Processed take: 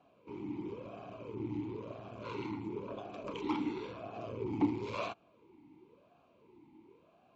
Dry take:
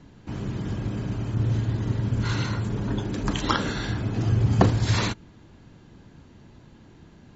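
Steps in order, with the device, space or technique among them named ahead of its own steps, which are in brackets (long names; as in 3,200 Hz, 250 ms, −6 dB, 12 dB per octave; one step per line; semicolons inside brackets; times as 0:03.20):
talk box (tube saturation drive 19 dB, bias 0.6; formant filter swept between two vowels a-u 0.97 Hz)
level +5.5 dB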